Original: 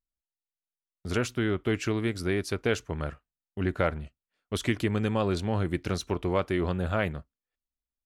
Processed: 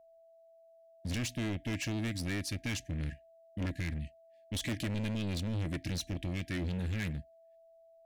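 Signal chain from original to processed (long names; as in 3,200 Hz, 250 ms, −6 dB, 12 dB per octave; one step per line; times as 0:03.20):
linear-phase brick-wall band-stop 340–1,600 Hz
steady tone 660 Hz −58 dBFS
gain into a clipping stage and back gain 31.5 dB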